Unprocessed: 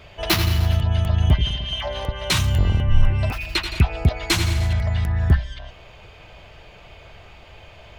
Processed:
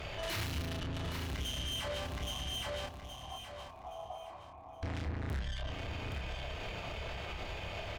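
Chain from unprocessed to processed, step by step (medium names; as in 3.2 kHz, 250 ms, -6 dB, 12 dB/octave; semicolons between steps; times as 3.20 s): dynamic bell 1.9 kHz, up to +4 dB, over -36 dBFS, Q 0.85; valve stage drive 33 dB, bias 0.7; compression, threshold -38 dBFS, peak gain reduction 6 dB; 2.04–4.83 s: cascade formant filter a; doubling 29 ms -4 dB; feedback delay 820 ms, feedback 31%, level -7 dB; peak limiter -38 dBFS, peak gain reduction 9.5 dB; trim +6.5 dB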